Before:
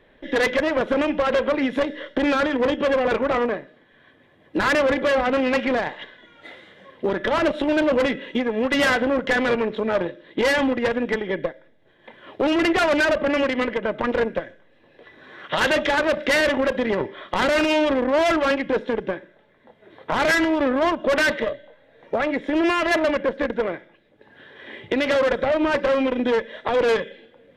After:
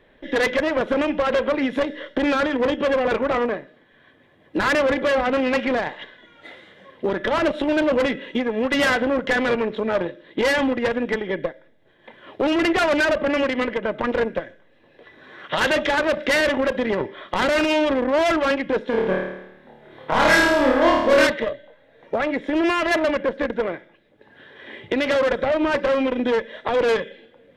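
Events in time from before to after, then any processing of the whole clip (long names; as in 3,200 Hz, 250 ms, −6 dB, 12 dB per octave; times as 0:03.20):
0:18.90–0:21.27: flutter between parallel walls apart 4.6 metres, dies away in 0.87 s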